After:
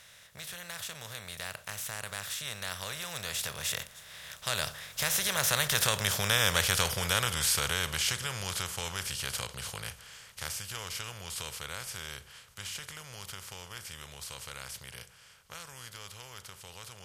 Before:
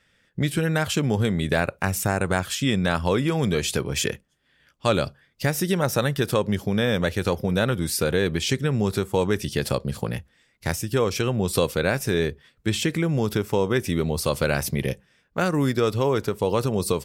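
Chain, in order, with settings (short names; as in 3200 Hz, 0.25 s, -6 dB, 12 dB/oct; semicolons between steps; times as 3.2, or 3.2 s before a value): per-bin compression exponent 0.4; Doppler pass-by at 6.37, 28 m/s, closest 29 m; passive tone stack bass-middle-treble 10-0-10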